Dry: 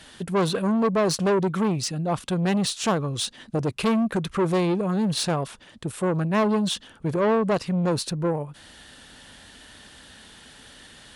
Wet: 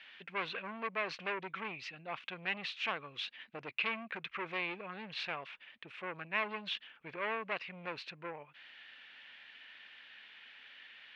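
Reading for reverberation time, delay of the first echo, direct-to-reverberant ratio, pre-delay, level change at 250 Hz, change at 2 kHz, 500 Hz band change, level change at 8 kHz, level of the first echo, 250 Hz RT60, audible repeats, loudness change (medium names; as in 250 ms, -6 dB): no reverb, no echo, no reverb, no reverb, -26.5 dB, -2.5 dB, -20.0 dB, under -30 dB, no echo, no reverb, no echo, -15.0 dB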